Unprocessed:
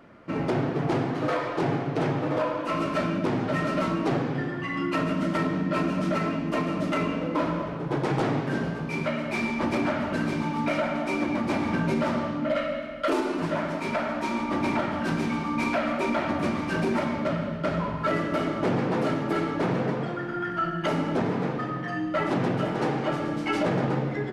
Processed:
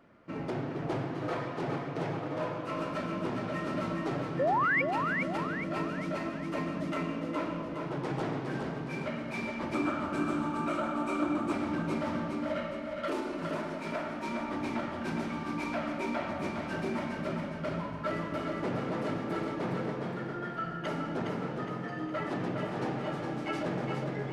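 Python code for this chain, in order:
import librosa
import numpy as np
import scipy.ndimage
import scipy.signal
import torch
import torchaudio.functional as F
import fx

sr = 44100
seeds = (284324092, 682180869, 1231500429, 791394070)

y = fx.spec_paint(x, sr, seeds[0], shape='rise', start_s=4.39, length_s=0.43, low_hz=490.0, high_hz=2400.0, level_db=-18.0)
y = fx.graphic_eq_31(y, sr, hz=(315, 1250, 2000, 5000, 8000), db=(10, 11, -8, -6, 8), at=(9.74, 11.52))
y = fx.echo_feedback(y, sr, ms=413, feedback_pct=48, wet_db=-5)
y = y * 10.0 ** (-9.0 / 20.0)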